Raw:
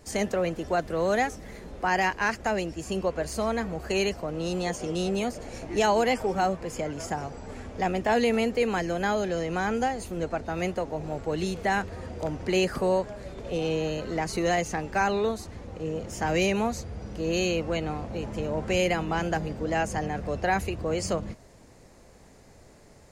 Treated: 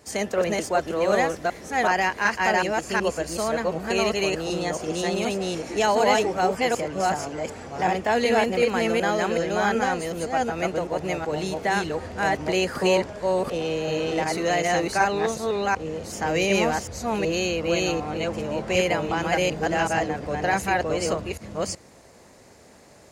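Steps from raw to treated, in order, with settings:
delay that plays each chunk backwards 375 ms, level 0 dB
high-pass filter 62 Hz
low-shelf EQ 270 Hz −6.5 dB
level +2.5 dB

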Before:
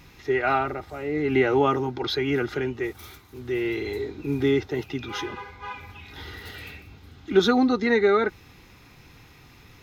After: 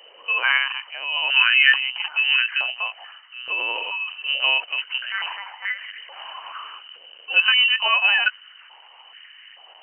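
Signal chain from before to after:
linear-prediction vocoder at 8 kHz pitch kept
voice inversion scrambler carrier 3,000 Hz
high-pass on a step sequencer 2.3 Hz 510–1,800 Hz

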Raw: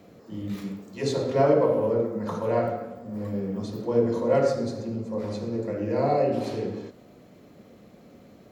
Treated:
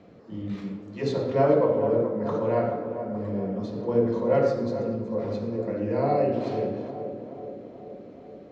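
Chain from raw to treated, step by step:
high-frequency loss of the air 150 metres
on a send: tape delay 428 ms, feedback 74%, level −8 dB, low-pass 1,100 Hz

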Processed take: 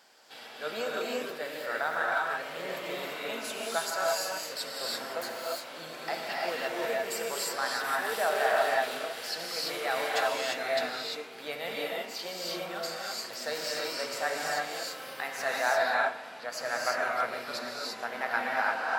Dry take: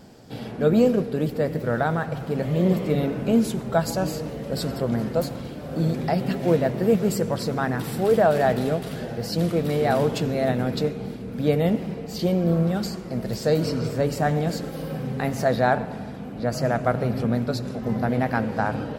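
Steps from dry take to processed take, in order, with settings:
high-pass filter 1,200 Hz 12 dB per octave
high-shelf EQ 5,000 Hz −4.5 dB
reverb whose tail is shaped and stops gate 370 ms rising, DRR −4 dB
level −1 dB

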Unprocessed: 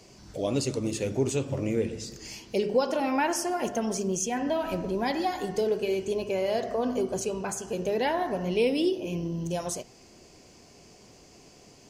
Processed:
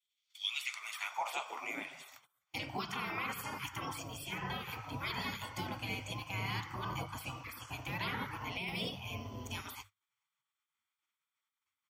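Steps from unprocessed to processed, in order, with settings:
gate on every frequency bin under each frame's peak −20 dB weak
mains-hum notches 50/100/150 Hz
noise gate −54 dBFS, range −25 dB
flat-topped bell 6,500 Hz −8.5 dB
comb filter 0.9 ms, depth 47%
compressor whose output falls as the input rises −39 dBFS, ratio −1
high-pass filter sweep 3,400 Hz → 100 Hz, 0:00.46–0:02.35
level +2.5 dB

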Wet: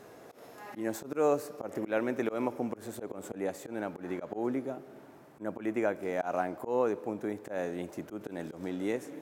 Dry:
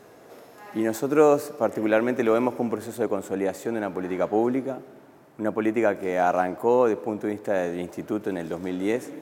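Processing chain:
volume swells 126 ms
in parallel at +2 dB: downward compressor, threshold −39 dBFS, peak gain reduction 22.5 dB
on the sum: level −9 dB

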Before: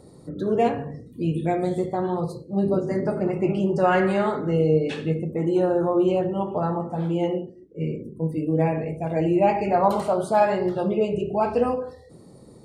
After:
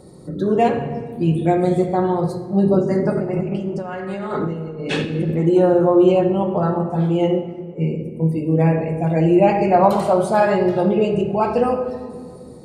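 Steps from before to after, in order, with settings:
0:03.15–0:05.37: compressor whose output falls as the input rises −31 dBFS, ratio −1
rectangular room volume 3,900 cubic metres, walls mixed, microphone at 1 metre
level +4.5 dB

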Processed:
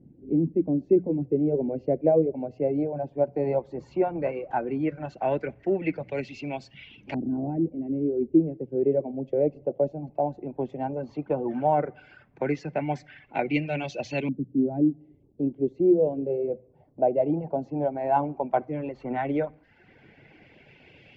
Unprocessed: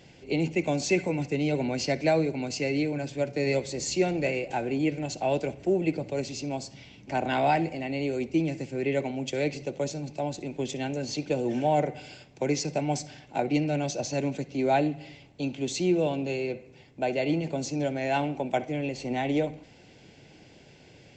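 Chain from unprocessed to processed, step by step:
auto-filter low-pass saw up 0.14 Hz 250–3,000 Hz
reverb reduction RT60 0.72 s
mains-hum notches 60/120/180 Hz

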